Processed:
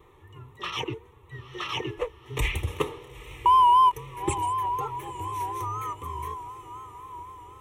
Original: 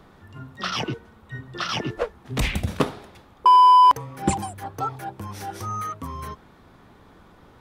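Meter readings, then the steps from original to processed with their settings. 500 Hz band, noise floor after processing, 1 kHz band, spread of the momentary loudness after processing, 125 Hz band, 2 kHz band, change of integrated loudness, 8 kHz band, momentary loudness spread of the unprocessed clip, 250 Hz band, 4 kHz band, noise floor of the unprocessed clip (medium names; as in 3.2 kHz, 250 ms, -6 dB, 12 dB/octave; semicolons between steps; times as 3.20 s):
-2.5 dB, -54 dBFS, -4.5 dB, 23 LU, -4.5 dB, -3.5 dB, -5.5 dB, -4.5 dB, 22 LU, -8.0 dB, -4.5 dB, -52 dBFS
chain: peaking EQ 5.9 kHz +4 dB 0.66 oct; comb of notches 270 Hz; echo that smears into a reverb 919 ms, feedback 56%, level -14.5 dB; vibrato 4 Hz 69 cents; static phaser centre 1 kHz, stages 8; dynamic bell 720 Hz, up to -6 dB, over -26 dBFS, Q 0.77; endings held to a fixed fall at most 580 dB/s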